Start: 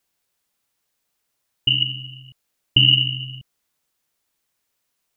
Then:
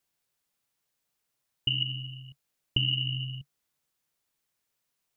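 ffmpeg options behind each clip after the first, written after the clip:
ffmpeg -i in.wav -af "equalizer=frequency=140:width_type=o:width=0.41:gain=5.5,acompressor=threshold=-18dB:ratio=6,volume=-6dB" out.wav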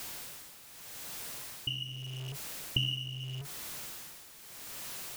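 ffmpeg -i in.wav -af "aeval=exprs='val(0)+0.5*0.0168*sgn(val(0))':channel_layout=same,tremolo=f=0.81:d=0.72" out.wav

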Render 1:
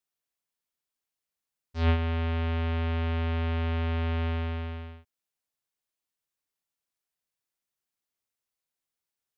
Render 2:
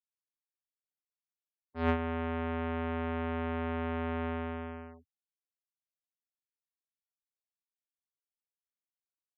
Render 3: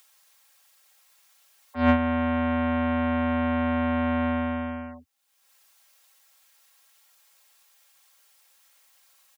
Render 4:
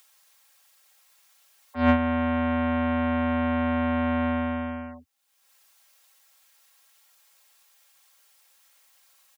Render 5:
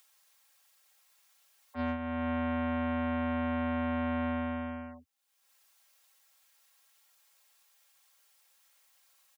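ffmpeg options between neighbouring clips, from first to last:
ffmpeg -i in.wav -filter_complex "[0:a]afftfilt=real='re*gte(hypot(re,im),0.00447)':imag='im*gte(hypot(re,im),0.00447)':win_size=1024:overlap=0.75,aeval=exprs='0.178*(cos(1*acos(clip(val(0)/0.178,-1,1)))-cos(1*PI/2))+0.02*(cos(3*acos(clip(val(0)/0.178,-1,1)))-cos(3*PI/2))+0.00282*(cos(4*acos(clip(val(0)/0.178,-1,1)))-cos(4*PI/2))+0.00316*(cos(5*acos(clip(val(0)/0.178,-1,1)))-cos(5*PI/2))':channel_layout=same,acrossover=split=160 2200:gain=0.2 1 0.112[link_01][link_02][link_03];[link_01][link_02][link_03]amix=inputs=3:normalize=0,volume=3dB" out.wav
ffmpeg -i in.wav -filter_complex "[0:a]highpass=63,aecho=1:1:3.7:0.9,acrossover=split=360|500[link_01][link_02][link_03];[link_03]acompressor=mode=upward:threshold=-46dB:ratio=2.5[link_04];[link_01][link_02][link_04]amix=inputs=3:normalize=0,volume=6.5dB" out.wav
ffmpeg -i in.wav -af anull out.wav
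ffmpeg -i in.wav -af "alimiter=limit=-18.5dB:level=0:latency=1:release=465,volume=-6dB" out.wav

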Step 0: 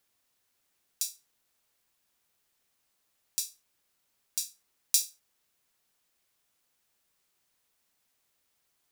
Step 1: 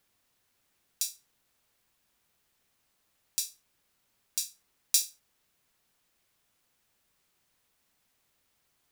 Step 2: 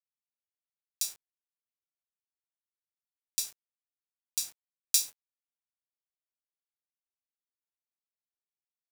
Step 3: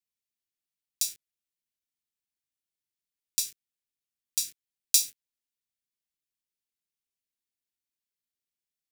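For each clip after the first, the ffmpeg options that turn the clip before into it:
ffmpeg -i in.wav -af "acontrast=39,bass=frequency=250:gain=4,treble=frequency=4000:gain=-3,volume=-2dB" out.wav
ffmpeg -i in.wav -af "acrusher=bits=7:mix=0:aa=0.000001" out.wav
ffmpeg -i in.wav -af "asuperstop=centerf=860:order=4:qfactor=0.54,volume=3.5dB" out.wav

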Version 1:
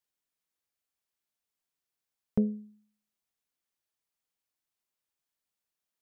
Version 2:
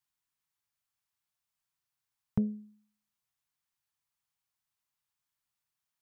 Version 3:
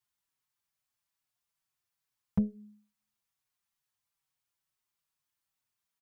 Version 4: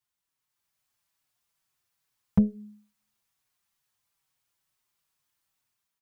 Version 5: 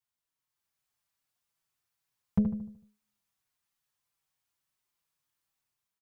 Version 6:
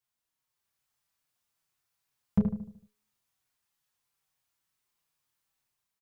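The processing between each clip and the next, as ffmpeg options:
ffmpeg -i in.wav -af "equalizer=frequency=125:width_type=o:width=1:gain=8,equalizer=frequency=250:width_type=o:width=1:gain=-5,equalizer=frequency=500:width_type=o:width=1:gain=-10,equalizer=frequency=1000:width_type=o:width=1:gain=5" out.wav
ffmpeg -i in.wav -filter_complex "[0:a]asplit=2[link_01][link_02];[link_02]adelay=5,afreqshift=-2.3[link_03];[link_01][link_03]amix=inputs=2:normalize=1,volume=3.5dB" out.wav
ffmpeg -i in.wav -af "dynaudnorm=framelen=220:gausssize=5:maxgain=7dB" out.wav
ffmpeg -i in.wav -filter_complex "[0:a]asplit=2[link_01][link_02];[link_02]adelay=75,lowpass=frequency=1400:poles=1,volume=-6dB,asplit=2[link_03][link_04];[link_04]adelay=75,lowpass=frequency=1400:poles=1,volume=0.48,asplit=2[link_05][link_06];[link_06]adelay=75,lowpass=frequency=1400:poles=1,volume=0.48,asplit=2[link_07][link_08];[link_08]adelay=75,lowpass=frequency=1400:poles=1,volume=0.48,asplit=2[link_09][link_10];[link_10]adelay=75,lowpass=frequency=1400:poles=1,volume=0.48,asplit=2[link_11][link_12];[link_12]adelay=75,lowpass=frequency=1400:poles=1,volume=0.48[link_13];[link_01][link_03][link_05][link_07][link_09][link_11][link_13]amix=inputs=7:normalize=0,volume=-5dB" out.wav
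ffmpeg -i in.wav -filter_complex "[0:a]asplit=2[link_01][link_02];[link_02]adelay=31,volume=-7dB[link_03];[link_01][link_03]amix=inputs=2:normalize=0,volume=1.5dB" out.wav

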